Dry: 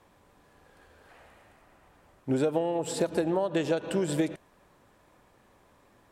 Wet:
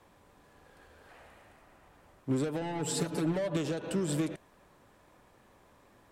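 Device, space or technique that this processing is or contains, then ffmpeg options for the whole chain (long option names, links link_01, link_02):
one-band saturation: -filter_complex "[0:a]acrossover=split=290|4000[link_01][link_02][link_03];[link_02]asoftclip=type=tanh:threshold=-36dB[link_04];[link_01][link_04][link_03]amix=inputs=3:normalize=0,asettb=1/sr,asplit=3[link_05][link_06][link_07];[link_05]atrim=end=2.614[link_08];[link_06]atrim=start=2.61:end=3.57,asetpts=PTS-STARTPTS,afade=type=in:duration=0.004:curve=qsin,afade=type=out:start_time=0.956:duration=0.004:curve=qsin,aecho=1:1:6.9:0.87,atrim=end_sample=42336[link_09];[link_07]atrim=start=3.566[link_10];[link_08][link_09]acrossfade=duration=0.004:curve1=hsin:curve2=qsin[link_11];[link_11][link_10]acrossfade=duration=0.004:curve1=qsin:curve2=hsin"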